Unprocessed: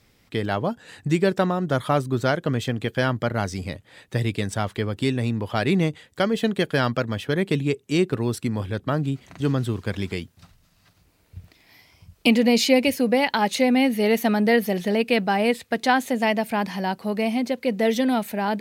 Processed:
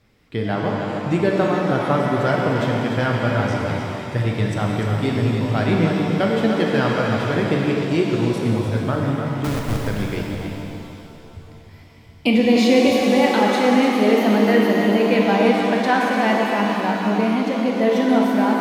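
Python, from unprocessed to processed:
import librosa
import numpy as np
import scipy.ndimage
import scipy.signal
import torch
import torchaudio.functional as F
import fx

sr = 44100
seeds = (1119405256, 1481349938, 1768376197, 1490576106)

y = fx.high_shelf(x, sr, hz=4200.0, db=-11.0)
y = fx.schmitt(y, sr, flips_db=-22.5, at=(9.44, 9.87))
y = y + 10.0 ** (-8.0 / 20.0) * np.pad(y, (int(297 * sr / 1000.0), 0))[:len(y)]
y = fx.rev_shimmer(y, sr, seeds[0], rt60_s=2.9, semitones=7, shimmer_db=-8, drr_db=-1.0)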